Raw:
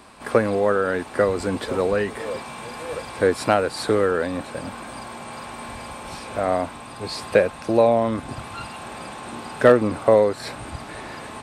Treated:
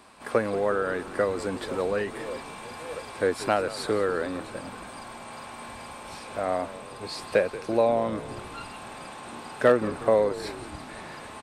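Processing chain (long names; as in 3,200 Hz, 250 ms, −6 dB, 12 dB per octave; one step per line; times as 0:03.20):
low-shelf EQ 210 Hz −5 dB
on a send: echo with shifted repeats 180 ms, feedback 58%, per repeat −73 Hz, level −15.5 dB
on the sum: level −5 dB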